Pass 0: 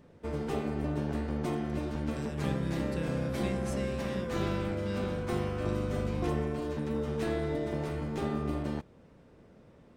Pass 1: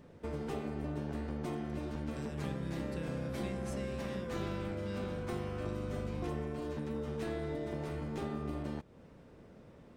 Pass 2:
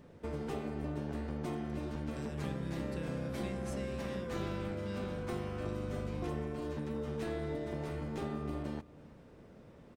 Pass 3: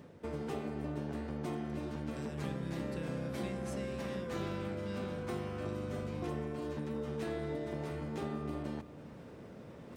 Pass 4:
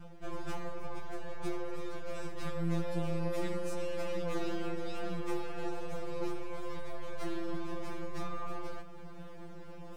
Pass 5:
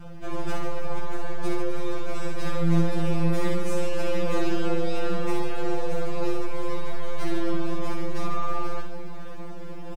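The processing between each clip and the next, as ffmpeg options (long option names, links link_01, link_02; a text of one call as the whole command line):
ffmpeg -i in.wav -af "acompressor=threshold=-41dB:ratio=2,volume=1dB" out.wav
ffmpeg -i in.wav -filter_complex "[0:a]asplit=2[link_01][link_02];[link_02]adelay=332.4,volume=-20dB,highshelf=frequency=4000:gain=-7.48[link_03];[link_01][link_03]amix=inputs=2:normalize=0" out.wav
ffmpeg -i in.wav -af "highpass=82,areverse,acompressor=mode=upward:threshold=-42dB:ratio=2.5,areverse" out.wav
ffmpeg -i in.wav -af "aeval=exprs='max(val(0),0)':channel_layout=same,afftfilt=real='re*2.83*eq(mod(b,8),0)':imag='im*2.83*eq(mod(b,8),0)':win_size=2048:overlap=0.75,volume=7.5dB" out.wav
ffmpeg -i in.wav -af "aecho=1:1:60|144|261.6|426.2|656.7:0.631|0.398|0.251|0.158|0.1,volume=7dB" out.wav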